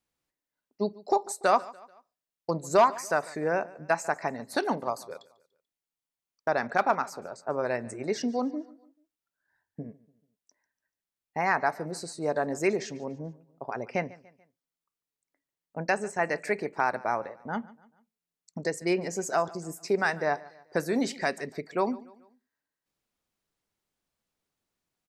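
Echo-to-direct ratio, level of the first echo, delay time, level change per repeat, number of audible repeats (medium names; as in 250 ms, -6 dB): -20.0 dB, -21.0 dB, 145 ms, -7.0 dB, 2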